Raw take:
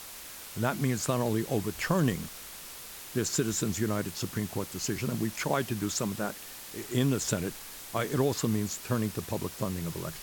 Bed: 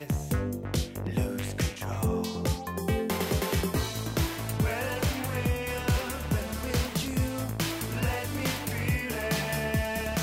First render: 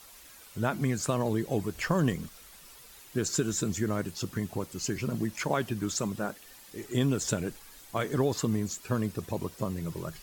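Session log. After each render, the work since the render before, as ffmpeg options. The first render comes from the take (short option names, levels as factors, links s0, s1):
-af "afftdn=nr=10:nf=-45"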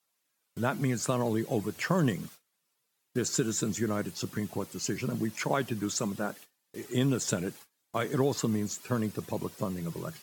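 -af "highpass=f=110:w=0.5412,highpass=f=110:w=1.3066,agate=range=0.0447:threshold=0.00447:ratio=16:detection=peak"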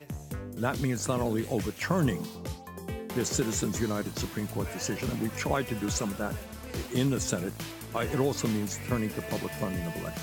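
-filter_complex "[1:a]volume=0.355[s0];[0:a][s0]amix=inputs=2:normalize=0"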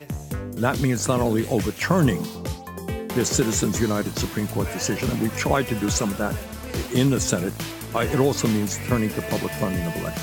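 -af "volume=2.37"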